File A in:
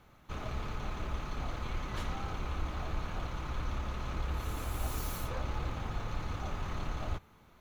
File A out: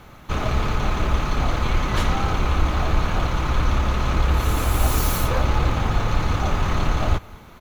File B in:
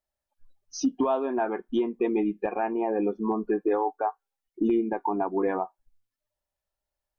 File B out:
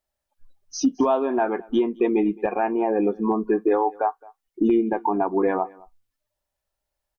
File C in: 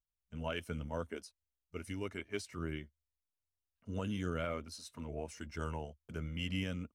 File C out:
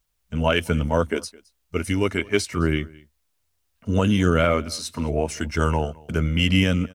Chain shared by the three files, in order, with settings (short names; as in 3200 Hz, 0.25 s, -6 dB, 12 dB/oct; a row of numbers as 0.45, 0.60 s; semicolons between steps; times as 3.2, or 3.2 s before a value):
echo 0.215 s -24 dB; match loudness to -23 LUFS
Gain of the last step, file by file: +16.0, +4.5, +18.5 dB